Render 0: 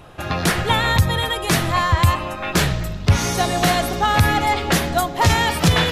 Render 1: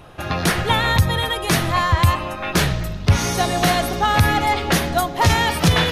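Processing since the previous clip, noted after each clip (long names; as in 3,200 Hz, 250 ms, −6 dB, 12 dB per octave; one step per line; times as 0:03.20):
notch filter 7,500 Hz, Q 12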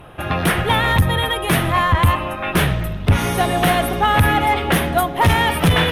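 asymmetric clip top −14 dBFS
flat-topped bell 5,600 Hz −12 dB 1.1 octaves
level +2.5 dB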